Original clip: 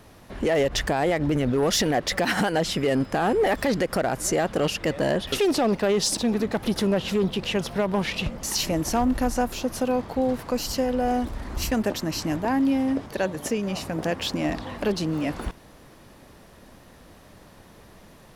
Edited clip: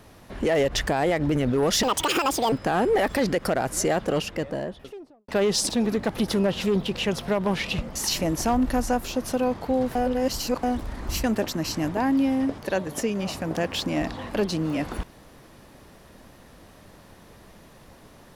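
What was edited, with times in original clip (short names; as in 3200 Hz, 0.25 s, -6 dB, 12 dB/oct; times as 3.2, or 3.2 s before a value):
1.83–3 speed 169%
4.36–5.76 studio fade out
10.43–11.11 reverse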